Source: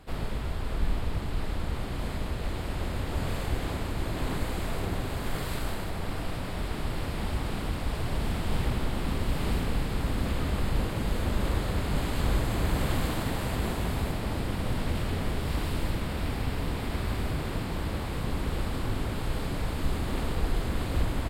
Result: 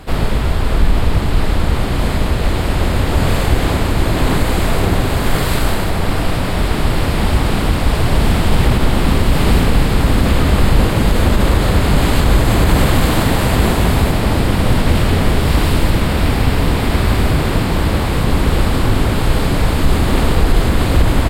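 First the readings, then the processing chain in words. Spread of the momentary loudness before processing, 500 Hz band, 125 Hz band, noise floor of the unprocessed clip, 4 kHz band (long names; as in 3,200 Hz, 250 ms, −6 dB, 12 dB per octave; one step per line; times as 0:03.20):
5 LU, +16.5 dB, +16.0 dB, −33 dBFS, +16.5 dB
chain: boost into a limiter +17.5 dB
level −1 dB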